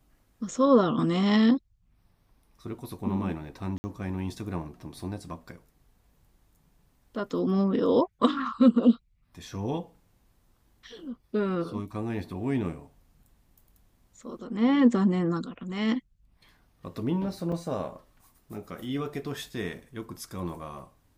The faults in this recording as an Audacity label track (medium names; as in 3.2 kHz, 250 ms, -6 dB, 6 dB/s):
3.780000	3.840000	dropout 60 ms
17.520000	17.520000	dropout 3.9 ms